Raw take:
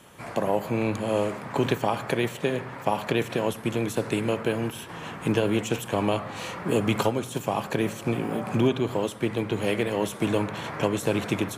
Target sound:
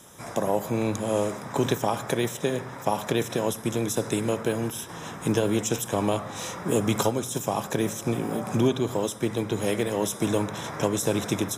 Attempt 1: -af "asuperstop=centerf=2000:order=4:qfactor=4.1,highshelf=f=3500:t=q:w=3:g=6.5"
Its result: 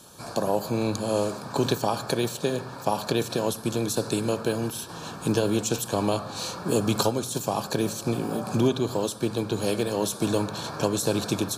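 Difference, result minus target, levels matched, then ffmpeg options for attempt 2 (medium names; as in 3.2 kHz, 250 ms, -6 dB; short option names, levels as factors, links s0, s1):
4 kHz band +3.0 dB
-af "asuperstop=centerf=4400:order=4:qfactor=4.1,highshelf=f=3500:t=q:w=3:g=6.5"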